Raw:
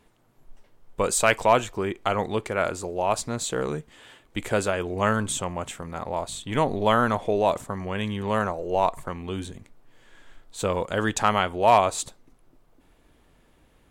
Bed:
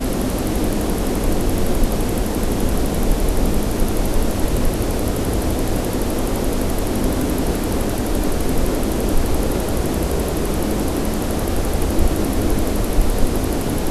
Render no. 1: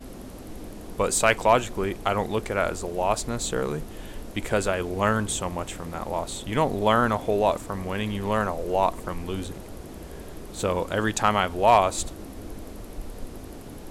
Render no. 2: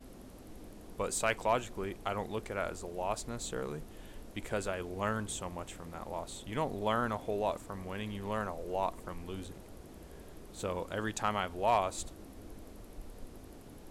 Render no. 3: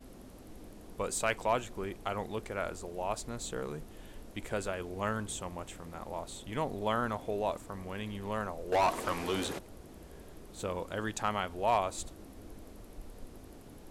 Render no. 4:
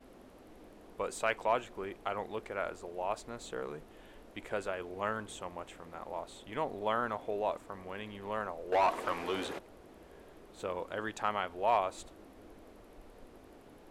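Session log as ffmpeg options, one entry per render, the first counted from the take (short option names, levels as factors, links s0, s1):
-filter_complex "[1:a]volume=0.1[s0];[0:a][s0]amix=inputs=2:normalize=0"
-af "volume=0.282"
-filter_complex "[0:a]asettb=1/sr,asplit=3[s0][s1][s2];[s0]atrim=end=8.724[s3];[s1]atrim=start=8.72:end=9.59,asetpts=PTS-STARTPTS,afade=t=in:d=0.004:c=qsin,afade=t=out:st=0.866:d=0.004:c=qsin,asplit=2[s4][s5];[s5]highpass=f=720:p=1,volume=15.8,asoftclip=type=tanh:threshold=0.112[s6];[s4][s6]amix=inputs=2:normalize=0,lowpass=f=5700:p=1,volume=0.501[s7];[s2]atrim=start=9.586[s8];[s3][s7]acrossfade=d=0.004:c1=hsin:c2=qsin[s9];[s9][s8]acrossfade=d=0.004:c1=qsin:c2=hsin"
-af "bass=f=250:g=-10,treble=f=4000:g=-10"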